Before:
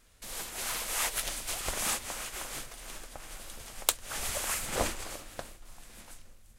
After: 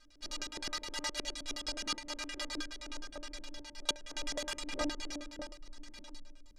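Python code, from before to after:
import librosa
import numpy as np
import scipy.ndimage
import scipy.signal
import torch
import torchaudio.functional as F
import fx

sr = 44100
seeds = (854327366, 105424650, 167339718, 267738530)

y = fx.stiff_resonator(x, sr, f0_hz=290.0, decay_s=0.25, stiffness=0.008)
y = fx.filter_lfo_lowpass(y, sr, shape='square', hz=9.6, low_hz=340.0, high_hz=4900.0, q=2.3)
y = fx.rider(y, sr, range_db=3, speed_s=0.5)
y = y * librosa.db_to_amplitude(10.5)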